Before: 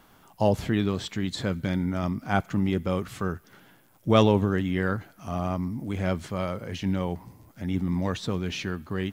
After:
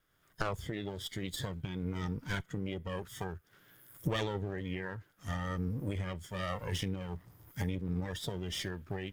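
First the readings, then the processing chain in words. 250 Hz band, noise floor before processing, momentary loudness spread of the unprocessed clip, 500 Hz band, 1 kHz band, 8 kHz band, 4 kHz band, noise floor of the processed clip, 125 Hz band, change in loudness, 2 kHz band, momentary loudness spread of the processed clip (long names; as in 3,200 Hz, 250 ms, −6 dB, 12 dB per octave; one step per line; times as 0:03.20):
−12.5 dB, −58 dBFS, 9 LU, −12.5 dB, −11.5 dB, −3.0 dB, −5.5 dB, −70 dBFS, −8.5 dB, −10.5 dB, −7.0 dB, 6 LU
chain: lower of the sound and its delayed copy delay 0.59 ms
camcorder AGC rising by 28 dB per second
parametric band 230 Hz −11 dB 0.61 octaves
noise reduction from a noise print of the clip's start 10 dB
level −8.5 dB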